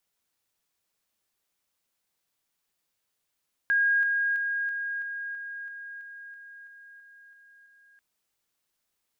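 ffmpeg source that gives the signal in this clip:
-f lavfi -i "aevalsrc='pow(10,(-20-3*floor(t/0.33))/20)*sin(2*PI*1630*t)':d=4.29:s=44100"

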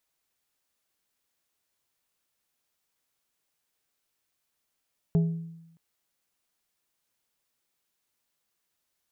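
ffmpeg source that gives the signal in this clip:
-f lavfi -i "aevalsrc='0.133*pow(10,-3*t/0.92)*sin(2*PI*165*t)+0.0376*pow(10,-3*t/0.484)*sin(2*PI*412.5*t)+0.0106*pow(10,-3*t/0.349)*sin(2*PI*660*t)+0.00299*pow(10,-3*t/0.298)*sin(2*PI*825*t)':d=0.62:s=44100"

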